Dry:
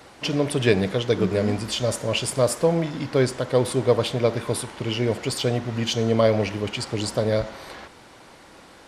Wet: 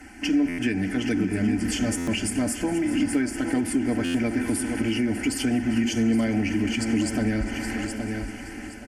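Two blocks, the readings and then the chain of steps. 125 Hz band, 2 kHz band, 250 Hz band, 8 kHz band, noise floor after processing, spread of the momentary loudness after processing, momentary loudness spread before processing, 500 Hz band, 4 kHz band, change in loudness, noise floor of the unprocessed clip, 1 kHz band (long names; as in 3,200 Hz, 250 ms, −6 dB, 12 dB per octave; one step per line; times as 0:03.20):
−6.0 dB, +1.5 dB, +5.0 dB, 0.0 dB, −39 dBFS, 6 LU, 7 LU, −10.5 dB, −5.0 dB, −2.0 dB, −48 dBFS, −6.0 dB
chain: echo machine with several playback heads 200 ms, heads all three, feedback 58%, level −22.5 dB
automatic gain control gain up to 4 dB
flat-topped bell 660 Hz −9 dB
phaser with its sweep stopped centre 770 Hz, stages 8
on a send: repeating echo 821 ms, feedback 28%, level −12 dB
on the sum: downward compressor, threshold −29 dBFS, peak gain reduction 11 dB
in parallel at −3 dB: brickwall limiter −27 dBFS, peak gain reduction 8 dB
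on the sum: Bessel low-pass filter 12,000 Hz
low-shelf EQ 390 Hz +6 dB
comb filter 3.9 ms, depth 56%
buffer that repeats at 0:00.48/0:01.97/0:04.04, samples 512, times 8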